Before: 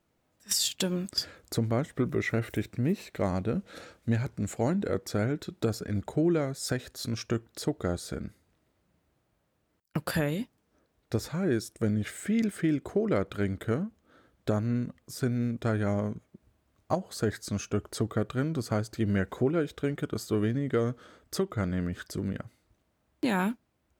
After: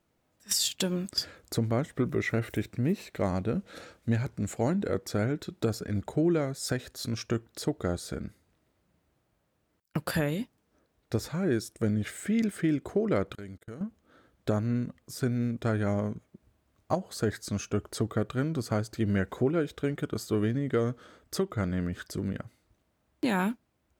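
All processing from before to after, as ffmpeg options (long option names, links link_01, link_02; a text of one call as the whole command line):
ffmpeg -i in.wav -filter_complex "[0:a]asettb=1/sr,asplit=3[link_01][link_02][link_03];[link_01]atrim=end=13.354[link_04];[link_02]atrim=start=13.35:end=13.81,asetpts=PTS-STARTPTS,afade=type=in:duration=0.004:curve=qsin,afade=type=out:start_time=0.456:duration=0.004:curve=qsin,agate=range=-34dB:threshold=-38dB:ratio=16:release=100:detection=peak,bass=frequency=250:gain=-1,treble=frequency=4000:gain=8,acompressor=threshold=-44dB:ratio=2.5:attack=3.2:release=140:knee=1:detection=peak[link_05];[link_03]atrim=start=13.806[link_06];[link_04][link_05]acrossfade=duration=0.004:curve1=hsin:curve2=qsin[link_07];[link_07][link_06]acrossfade=duration=0.004:curve1=qsin:curve2=hsin" out.wav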